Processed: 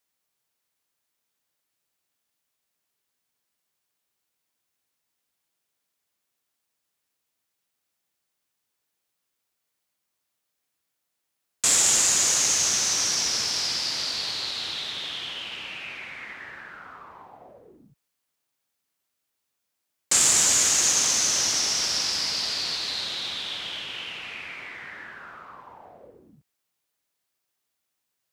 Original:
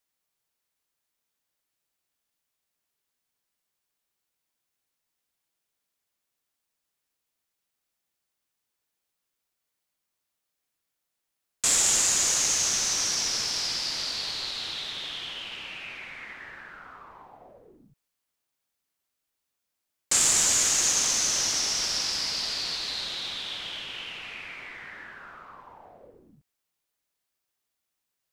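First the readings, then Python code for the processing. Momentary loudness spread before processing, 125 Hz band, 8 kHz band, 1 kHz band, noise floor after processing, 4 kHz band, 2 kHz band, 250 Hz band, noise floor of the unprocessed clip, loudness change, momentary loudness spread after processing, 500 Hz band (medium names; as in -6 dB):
20 LU, +2.0 dB, +2.5 dB, +2.5 dB, -80 dBFS, +2.5 dB, +2.5 dB, +2.5 dB, -83 dBFS, +2.5 dB, 20 LU, +2.5 dB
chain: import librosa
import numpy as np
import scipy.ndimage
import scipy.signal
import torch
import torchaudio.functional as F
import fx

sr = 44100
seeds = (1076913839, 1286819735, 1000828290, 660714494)

y = scipy.signal.sosfilt(scipy.signal.butter(2, 64.0, 'highpass', fs=sr, output='sos'), x)
y = y * 10.0 ** (2.5 / 20.0)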